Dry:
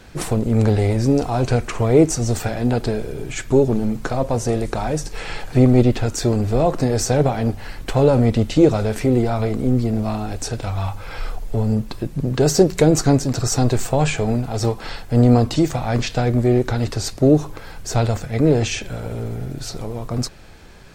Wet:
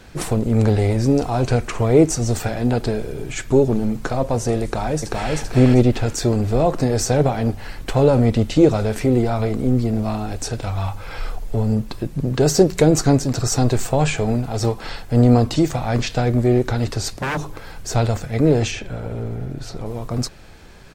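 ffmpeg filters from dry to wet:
ffmpeg -i in.wav -filter_complex "[0:a]asplit=2[link_01][link_02];[link_02]afade=type=in:start_time=4.63:duration=0.01,afade=type=out:start_time=5.35:duration=0.01,aecho=0:1:390|780|1170|1560:0.841395|0.210349|0.0525872|0.0131468[link_03];[link_01][link_03]amix=inputs=2:normalize=0,asettb=1/sr,asplit=3[link_04][link_05][link_06];[link_04]atrim=end=17.114[link_07];[link_05]atrim=start=17.11:end=17.92,asetpts=PTS-STARTPTS,afade=type=in:duration=0.004:curve=qsin,afade=type=out:start_time=0.806:duration=0.004:curve=qsin,aeval=exprs='0.133*(abs(mod(val(0)/0.133+3,4)-2)-1)':channel_layout=same[link_08];[link_06]atrim=start=17.916[link_09];[link_07][link_08]acrossfade=duration=0.004:curve1=hsin:curve2=qsin[link_10];[link_10][link_09]acrossfade=duration=0.004:curve1=qsin:curve2=hsin,asettb=1/sr,asplit=3[link_11][link_12][link_13];[link_11]atrim=end=18.714[link_14];[link_12]atrim=start=18.71:end=19.86,asetpts=PTS-STARTPTS,afade=type=in:duration=0.004:curve=qsin,afade=type=out:start_time=1.146:duration=0.004:curve=qsin,highshelf=frequency=3900:gain=-10.5[link_15];[link_13]atrim=start=19.856[link_16];[link_14][link_15]acrossfade=duration=0.004:curve1=hsin:curve2=qsin[link_17];[link_17][link_16]acrossfade=duration=0.004:curve1=qsin:curve2=hsin" out.wav

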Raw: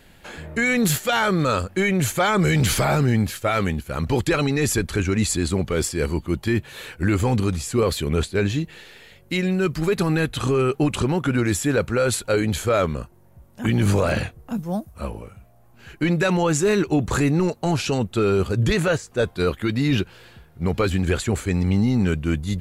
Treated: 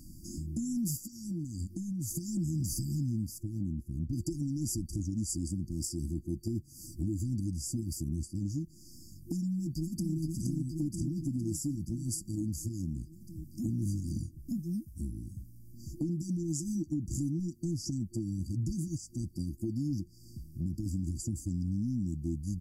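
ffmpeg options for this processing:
ffmpeg -i in.wav -filter_complex "[0:a]asettb=1/sr,asplit=3[link_01][link_02][link_03];[link_01]atrim=end=0.964[link_04];[link_02]atrim=start=0.96:end=2.11,asetpts=PTS-STARTPTS,afade=type=in:duration=0.004:curve=qsin,afade=type=out:start_time=1.146:duration=0.004:curve=qsin,acompressor=threshold=-26dB:ratio=6:attack=3.2:release=140:knee=1:detection=peak[link_05];[link_03]atrim=start=2.106[link_06];[link_04][link_05]acrossfade=duration=0.004:curve1=hsin:curve2=qsin[link_07];[link_07][link_06]acrossfade=duration=0.004:curve1=qsin:curve2=hsin,asettb=1/sr,asplit=3[link_08][link_09][link_10];[link_08]atrim=end=3.384[link_11];[link_09]atrim=start=3.38:end=4.13,asetpts=PTS-STARTPTS,afade=type=in:duration=0.004:curve=qsin,afade=type=out:start_time=0.746:duration=0.004:curve=qsin,highshelf=frequency=3000:width_type=q:width=1.5:gain=-12[link_12];[link_10]atrim=start=4.126[link_13];[link_11][link_12]acrossfade=duration=0.004:curve1=hsin:curve2=qsin[link_14];[link_14][link_13]acrossfade=duration=0.004:curve1=qsin:curve2=hsin,asplit=2[link_15][link_16];[link_16]afade=type=in:start_time=9.57:duration=0.01,afade=type=out:start_time=10.15:duration=0.01,aecho=0:1:470|940|1410|1880|2350|2820|3290|3760|4230:0.891251|0.534751|0.32085|0.19251|0.115506|0.0693037|0.0415822|0.0249493|0.0149696[link_17];[link_15][link_17]amix=inputs=2:normalize=0,afftfilt=real='re*(1-between(b*sr/4096,350,4600))':imag='im*(1-between(b*sr/4096,350,4600))':win_size=4096:overlap=0.75,acompressor=threshold=-40dB:ratio=3,volume=3.5dB" out.wav

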